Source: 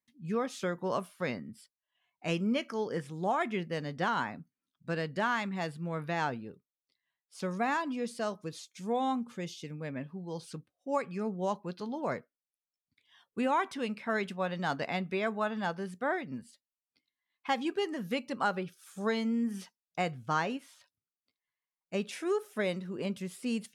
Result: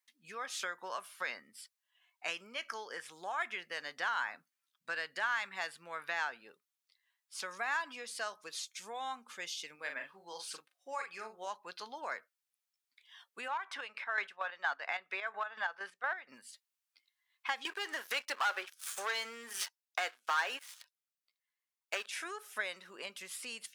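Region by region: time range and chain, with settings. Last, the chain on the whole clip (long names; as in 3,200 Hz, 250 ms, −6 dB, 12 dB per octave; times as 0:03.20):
0:09.75–0:11.47: low-shelf EQ 150 Hz −9.5 dB + double-tracking delay 41 ms −6 dB
0:13.48–0:16.29: high-pass filter 300 Hz 6 dB per octave + square-wave tremolo 4.3 Hz, depth 65%, duty 40% + mid-hump overdrive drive 11 dB, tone 1,200 Hz, clips at −18.5 dBFS
0:17.65–0:22.06: high-pass filter 300 Hz 24 dB per octave + leveller curve on the samples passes 3
whole clip: downward compressor, threshold −35 dBFS; dynamic equaliser 1,600 Hz, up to +5 dB, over −56 dBFS, Q 4; high-pass filter 1,100 Hz 12 dB per octave; level +6 dB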